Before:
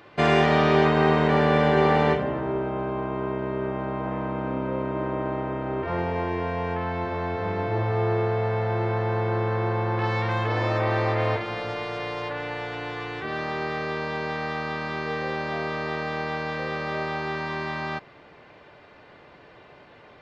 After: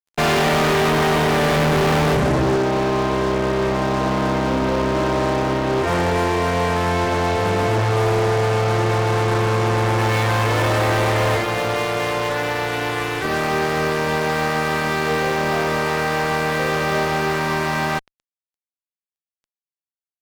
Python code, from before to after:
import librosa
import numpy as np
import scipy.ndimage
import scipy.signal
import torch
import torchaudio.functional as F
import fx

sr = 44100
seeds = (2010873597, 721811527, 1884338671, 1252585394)

y = fx.low_shelf(x, sr, hz=320.0, db=11.0, at=(1.56, 2.56))
y = fx.fuzz(y, sr, gain_db=30.0, gate_db=-39.0)
y = y * librosa.db_to_amplitude(-2.5)